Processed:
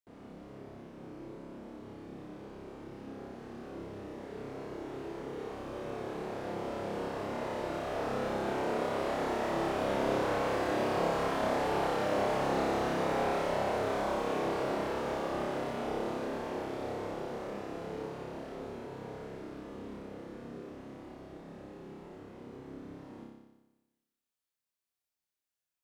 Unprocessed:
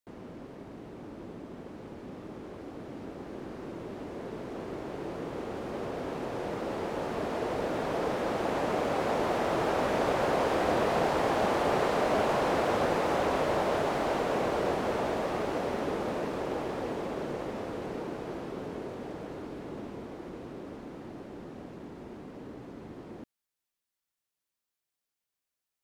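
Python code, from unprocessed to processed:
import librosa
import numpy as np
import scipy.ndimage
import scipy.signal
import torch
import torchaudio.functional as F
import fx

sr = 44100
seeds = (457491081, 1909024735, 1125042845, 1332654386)

y = fx.room_flutter(x, sr, wall_m=5.1, rt60_s=1.1)
y = F.gain(torch.from_numpy(y), -8.5).numpy()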